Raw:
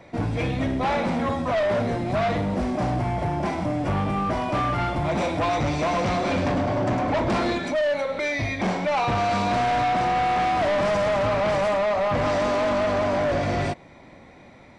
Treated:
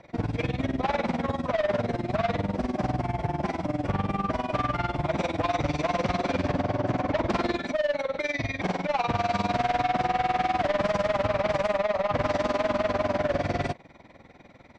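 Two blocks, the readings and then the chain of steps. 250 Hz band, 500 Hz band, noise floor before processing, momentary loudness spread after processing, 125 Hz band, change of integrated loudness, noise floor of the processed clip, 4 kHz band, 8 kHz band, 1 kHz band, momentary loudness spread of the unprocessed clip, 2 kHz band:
−4.0 dB, −3.5 dB, −48 dBFS, 4 LU, −4.0 dB, −4.0 dB, −51 dBFS, −4.0 dB, −6.0 dB, −4.0 dB, 4 LU, −4.0 dB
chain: low-pass filter 6,800 Hz 12 dB per octave
amplitude modulation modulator 20 Hz, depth 75%

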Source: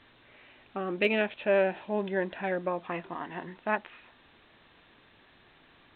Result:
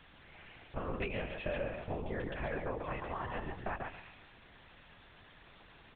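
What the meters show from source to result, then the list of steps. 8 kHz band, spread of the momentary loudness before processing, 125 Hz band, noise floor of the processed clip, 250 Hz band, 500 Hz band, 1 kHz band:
can't be measured, 12 LU, 0.0 dB, −59 dBFS, −9.0 dB, −10.5 dB, −6.5 dB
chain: downward compressor 16 to 1, threshold −34 dBFS, peak gain reduction 15 dB
on a send: repeating echo 134 ms, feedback 22%, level −4.5 dB
on the sum: linear-prediction vocoder at 8 kHz whisper

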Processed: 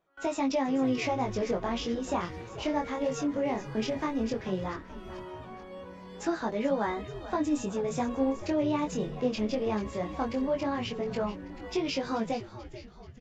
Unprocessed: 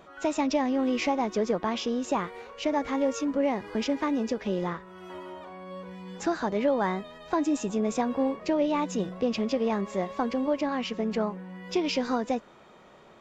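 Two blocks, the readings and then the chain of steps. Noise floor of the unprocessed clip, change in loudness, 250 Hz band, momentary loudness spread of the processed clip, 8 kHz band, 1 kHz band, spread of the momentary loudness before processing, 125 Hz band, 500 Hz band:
−53 dBFS, −2.5 dB, −2.5 dB, 14 LU, can't be measured, −3.0 dB, 13 LU, +1.0 dB, −2.5 dB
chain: noise gate with hold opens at −39 dBFS
chorus effect 0.16 Hz, delay 18 ms, depth 5.9 ms
echo with shifted repeats 435 ms, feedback 53%, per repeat −150 Hz, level −13 dB

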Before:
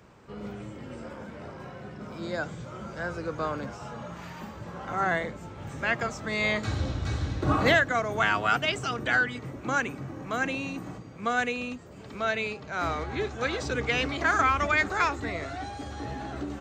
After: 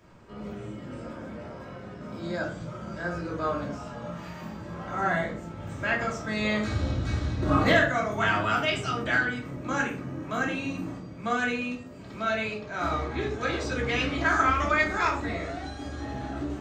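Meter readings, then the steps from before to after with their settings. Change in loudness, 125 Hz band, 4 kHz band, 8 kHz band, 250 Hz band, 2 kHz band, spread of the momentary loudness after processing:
0.0 dB, +1.5 dB, −0.5 dB, −1.0 dB, +3.0 dB, −0.5 dB, 16 LU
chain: rectangular room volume 410 cubic metres, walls furnished, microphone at 2.8 metres
level −4.5 dB

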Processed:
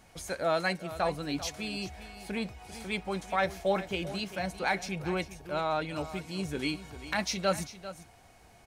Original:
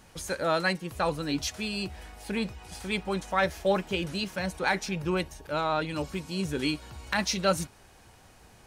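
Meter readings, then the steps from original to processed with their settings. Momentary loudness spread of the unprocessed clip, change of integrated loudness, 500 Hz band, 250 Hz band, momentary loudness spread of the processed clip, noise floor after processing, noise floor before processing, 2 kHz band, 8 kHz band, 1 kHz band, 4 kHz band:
8 LU, −3.0 dB, −2.0 dB, −4.0 dB, 10 LU, −58 dBFS, −56 dBFS, −3.0 dB, −4.0 dB, −2.0 dB, −4.0 dB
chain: hollow resonant body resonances 700/2,200 Hz, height 11 dB, ringing for 50 ms
on a send: single-tap delay 395 ms −14 dB
on the sum: level −4 dB

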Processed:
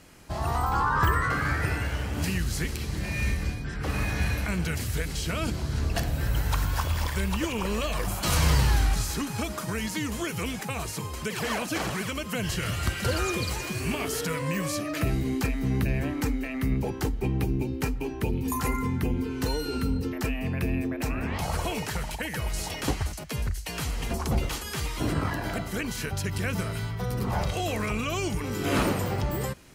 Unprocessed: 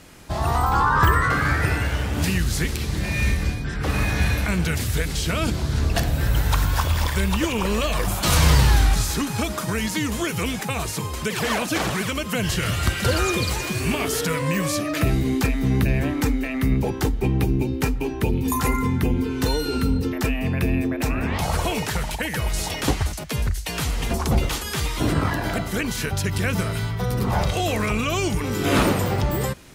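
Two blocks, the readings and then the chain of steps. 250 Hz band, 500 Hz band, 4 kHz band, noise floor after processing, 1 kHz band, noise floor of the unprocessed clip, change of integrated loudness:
−6.0 dB, −6.0 dB, −6.5 dB, −36 dBFS, −6.0 dB, −30 dBFS, −6.0 dB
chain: notch filter 3,600 Hz, Q 16
level −6 dB

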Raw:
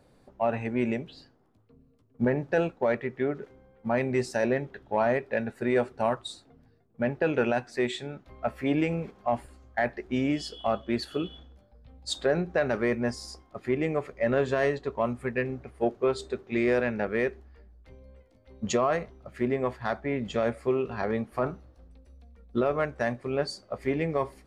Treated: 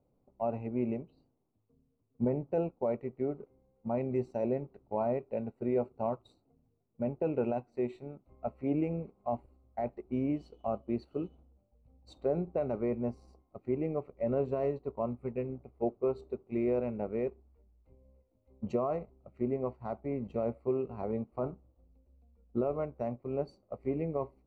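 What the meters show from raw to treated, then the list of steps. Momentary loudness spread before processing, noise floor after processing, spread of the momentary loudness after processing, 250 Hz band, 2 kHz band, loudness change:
9 LU, −75 dBFS, 8 LU, −5.0 dB, −22.5 dB, −6.0 dB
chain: mu-law and A-law mismatch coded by A
moving average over 26 samples
level −3.5 dB

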